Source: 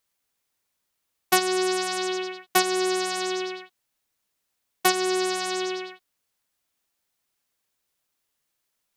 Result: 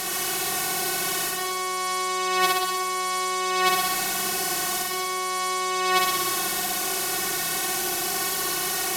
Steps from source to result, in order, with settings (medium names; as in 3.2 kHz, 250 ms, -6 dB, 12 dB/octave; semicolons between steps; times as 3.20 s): spectral levelling over time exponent 0.4; compressor with a negative ratio -32 dBFS, ratio -1; flutter echo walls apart 10.5 m, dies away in 1.3 s; trim +5.5 dB